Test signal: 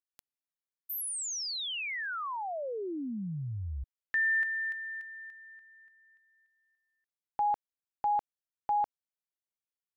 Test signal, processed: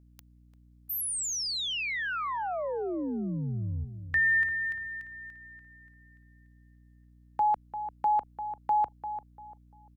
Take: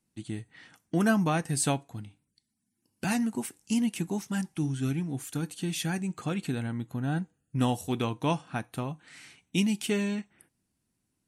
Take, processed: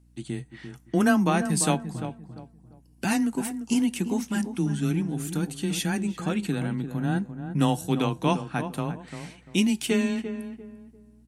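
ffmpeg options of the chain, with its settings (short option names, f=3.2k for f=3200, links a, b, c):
-filter_complex "[0:a]asplit=2[a][b];[b]adelay=345,lowpass=f=1.2k:p=1,volume=-9dB,asplit=2[c][d];[d]adelay=345,lowpass=f=1.2k:p=1,volume=0.31,asplit=2[e][f];[f]adelay=345,lowpass=f=1.2k:p=1,volume=0.31,asplit=2[g][h];[h]adelay=345,lowpass=f=1.2k:p=1,volume=0.31[i];[a][c][e][g][i]amix=inputs=5:normalize=0,afreqshift=15,aeval=exprs='val(0)+0.001*(sin(2*PI*60*n/s)+sin(2*PI*2*60*n/s)/2+sin(2*PI*3*60*n/s)/3+sin(2*PI*4*60*n/s)/4+sin(2*PI*5*60*n/s)/5)':c=same,volume=3.5dB"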